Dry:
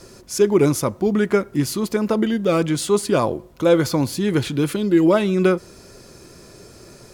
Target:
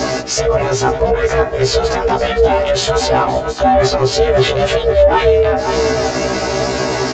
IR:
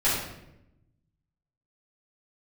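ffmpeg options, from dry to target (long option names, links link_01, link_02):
-filter_complex "[0:a]lowshelf=frequency=150:gain=6,aecho=1:1:5.8:0.49,bandreject=frequency=73.09:width_type=h:width=4,bandreject=frequency=146.18:width_type=h:width=4,bandreject=frequency=219.27:width_type=h:width=4,bandreject=frequency=292.36:width_type=h:width=4,bandreject=frequency=365.45:width_type=h:width=4,bandreject=frequency=438.54:width_type=h:width=4,areverse,acompressor=threshold=-24dB:ratio=8,areverse,aeval=exprs='val(0)*sin(2*PI*260*n/s)':channel_layout=same,asplit=2[link_01][link_02];[link_02]highpass=frequency=720:poles=1,volume=15dB,asoftclip=type=tanh:threshold=-17dB[link_03];[link_01][link_03]amix=inputs=2:normalize=0,lowpass=frequency=2300:poles=1,volume=-6dB,asplit=2[link_04][link_05];[link_05]aecho=0:1:523:0.2[link_06];[link_04][link_06]amix=inputs=2:normalize=0,aresample=16000,aresample=44100,alimiter=level_in=28.5dB:limit=-1dB:release=50:level=0:latency=1,afftfilt=real='re*1.73*eq(mod(b,3),0)':imag='im*1.73*eq(mod(b,3),0)':win_size=2048:overlap=0.75,volume=-2.5dB"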